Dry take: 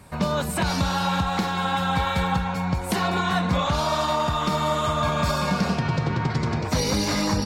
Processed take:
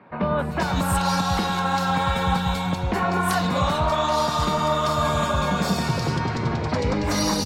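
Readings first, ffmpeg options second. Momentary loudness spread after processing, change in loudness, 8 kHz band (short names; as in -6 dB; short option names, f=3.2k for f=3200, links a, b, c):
3 LU, +1.0 dB, +1.0 dB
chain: -filter_complex "[0:a]acrossover=split=160|2600[a][b][c];[a]adelay=100[d];[c]adelay=390[e];[d][b][e]amix=inputs=3:normalize=0,volume=2dB"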